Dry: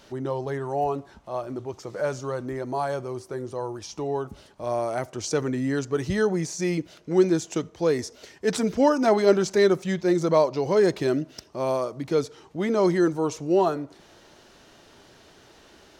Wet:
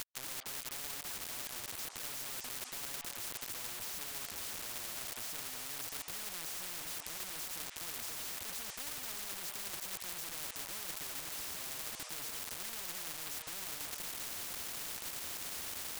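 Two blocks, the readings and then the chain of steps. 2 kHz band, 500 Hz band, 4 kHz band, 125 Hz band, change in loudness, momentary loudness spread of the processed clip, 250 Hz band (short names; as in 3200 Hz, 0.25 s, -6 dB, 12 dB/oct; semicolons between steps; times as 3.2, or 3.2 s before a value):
-10.0 dB, -32.5 dB, -2.5 dB, -26.5 dB, -14.5 dB, 1 LU, -31.0 dB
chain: delta modulation 64 kbps, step -28.5 dBFS; spectral noise reduction 19 dB; low shelf 72 Hz +6.5 dB; harmonic-percussive split harmonic -3 dB; bell 500 Hz -3.5 dB 0.75 oct; reverse; compressor 10:1, threshold -35 dBFS, peak gain reduction 18 dB; reverse; soft clip -30 dBFS, distortion -21 dB; resonator 290 Hz, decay 0.38 s, harmonics odd, mix 60%; flange 1 Hz, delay 4.3 ms, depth 8.7 ms, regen +24%; companded quantiser 4-bit; on a send: delay with a stepping band-pass 0.205 s, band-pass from 920 Hz, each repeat 1.4 oct, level -6.5 dB; on the sum: spectral compressor 10:1; gain +13.5 dB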